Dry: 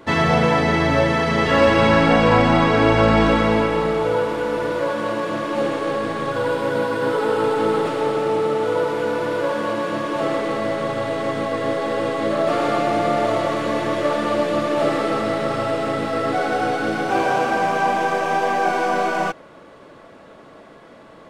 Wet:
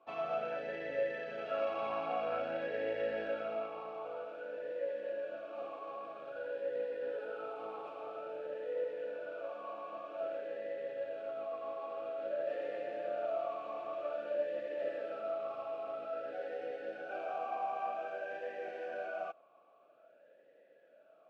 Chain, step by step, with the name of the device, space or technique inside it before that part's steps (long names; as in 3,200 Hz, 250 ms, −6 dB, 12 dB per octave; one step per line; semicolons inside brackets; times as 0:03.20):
talk box (tube saturation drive 7 dB, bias 0.7; formant filter swept between two vowels a-e 0.51 Hz)
level −7 dB